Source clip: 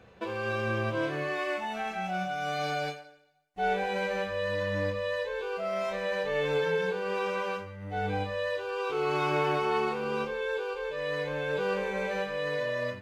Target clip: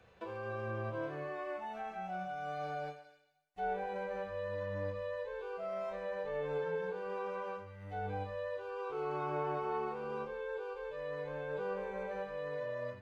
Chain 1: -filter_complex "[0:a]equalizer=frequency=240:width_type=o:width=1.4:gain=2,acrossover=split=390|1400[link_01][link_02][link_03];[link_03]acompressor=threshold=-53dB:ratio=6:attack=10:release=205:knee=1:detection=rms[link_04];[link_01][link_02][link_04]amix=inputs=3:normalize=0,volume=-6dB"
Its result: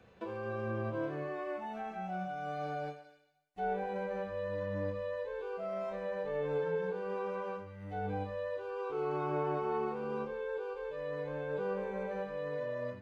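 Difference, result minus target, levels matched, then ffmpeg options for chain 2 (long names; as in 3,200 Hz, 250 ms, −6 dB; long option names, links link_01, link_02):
250 Hz band +4.0 dB
-filter_complex "[0:a]equalizer=frequency=240:width_type=o:width=1.4:gain=-6,acrossover=split=390|1400[link_01][link_02][link_03];[link_03]acompressor=threshold=-53dB:ratio=6:attack=10:release=205:knee=1:detection=rms[link_04];[link_01][link_02][link_04]amix=inputs=3:normalize=0,volume=-6dB"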